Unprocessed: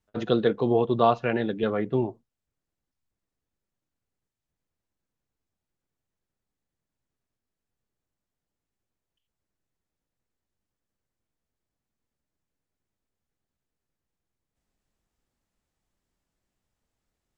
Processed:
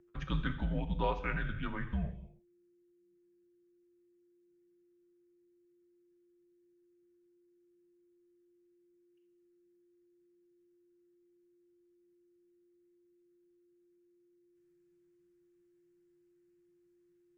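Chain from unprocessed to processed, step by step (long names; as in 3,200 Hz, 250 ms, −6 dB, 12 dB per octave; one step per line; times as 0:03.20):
steady tone 540 Hz −46 dBFS
graphic EQ with 10 bands 125 Hz −10 dB, 250 Hz +7 dB, 500 Hz −11 dB, 1,000 Hz −3 dB, 2,000 Hz +7 dB, 4,000 Hz −5 dB
reverb whose tail is shaped and stops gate 340 ms falling, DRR 8 dB
frequency shifter −190 Hz
level −7.5 dB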